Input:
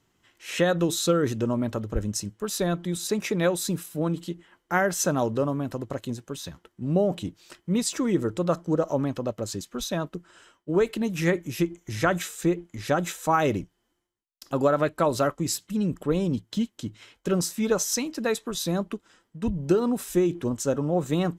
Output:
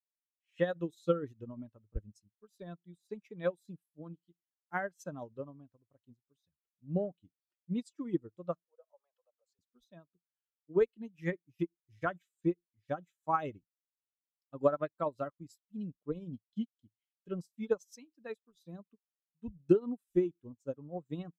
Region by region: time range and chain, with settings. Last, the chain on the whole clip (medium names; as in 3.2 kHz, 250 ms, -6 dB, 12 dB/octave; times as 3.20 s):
8.64–9.59 s: steep high-pass 460 Hz 48 dB/octave + compression 1.5:1, threshold -35 dBFS
whole clip: expander on every frequency bin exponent 1.5; treble shelf 3.5 kHz -7 dB; upward expansion 2.5:1, over -41 dBFS